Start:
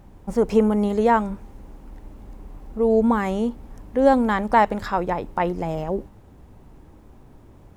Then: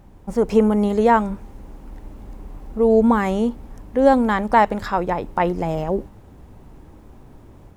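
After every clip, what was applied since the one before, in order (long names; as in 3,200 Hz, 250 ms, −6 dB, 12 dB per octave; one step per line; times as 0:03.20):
automatic gain control gain up to 3.5 dB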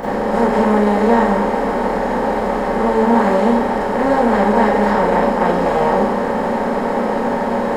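compressor on every frequency bin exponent 0.2
four-comb reverb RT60 0.46 s, combs from 30 ms, DRR −7.5 dB
level −13.5 dB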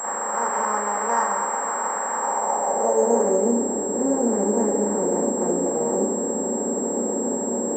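band-pass filter sweep 1,200 Hz → 330 Hz, 0:02.16–0:03.56
switching amplifier with a slow clock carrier 7,600 Hz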